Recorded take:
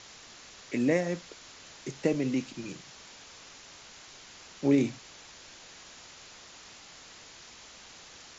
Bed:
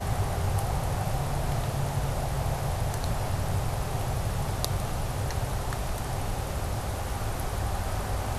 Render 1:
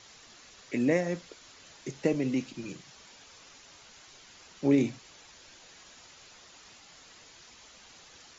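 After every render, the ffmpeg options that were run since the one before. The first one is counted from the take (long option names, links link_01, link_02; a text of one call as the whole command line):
ffmpeg -i in.wav -af "afftdn=noise_reduction=6:noise_floor=-51" out.wav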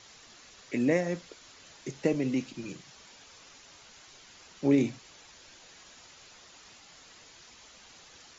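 ffmpeg -i in.wav -af anull out.wav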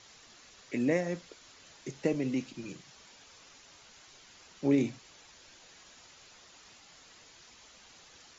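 ffmpeg -i in.wav -af "volume=-2.5dB" out.wav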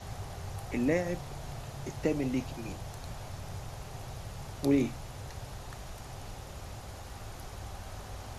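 ffmpeg -i in.wav -i bed.wav -filter_complex "[1:a]volume=-13dB[link_01];[0:a][link_01]amix=inputs=2:normalize=0" out.wav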